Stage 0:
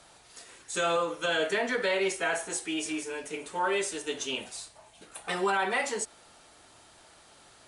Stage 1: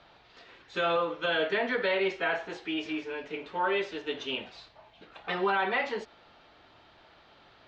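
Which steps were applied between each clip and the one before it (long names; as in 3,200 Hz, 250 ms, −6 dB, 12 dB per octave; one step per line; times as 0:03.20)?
inverse Chebyshev low-pass filter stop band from 9,100 Hz, stop band 50 dB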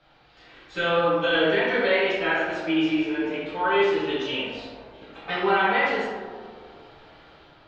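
automatic gain control gain up to 6 dB
tape delay 79 ms, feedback 86%, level −6 dB, low-pass 2,000 Hz
convolution reverb RT60 0.65 s, pre-delay 4 ms, DRR −6.5 dB
level −7.5 dB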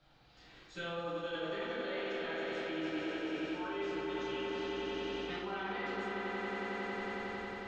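echo that builds up and dies away 91 ms, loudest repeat 5, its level −8 dB
reversed playback
downward compressor 6 to 1, threshold −27 dBFS, peak gain reduction 12.5 dB
reversed playback
drawn EQ curve 140 Hz 0 dB, 510 Hz −7 dB, 2,700 Hz −7 dB, 7,100 Hz +2 dB
level −3 dB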